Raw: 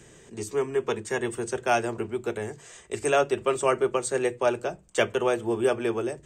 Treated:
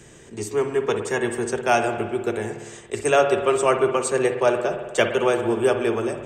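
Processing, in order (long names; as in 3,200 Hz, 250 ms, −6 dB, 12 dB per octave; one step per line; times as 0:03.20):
spring reverb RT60 1.4 s, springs 55 ms, chirp 30 ms, DRR 6.5 dB
level that may rise only so fast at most 550 dB per second
level +4 dB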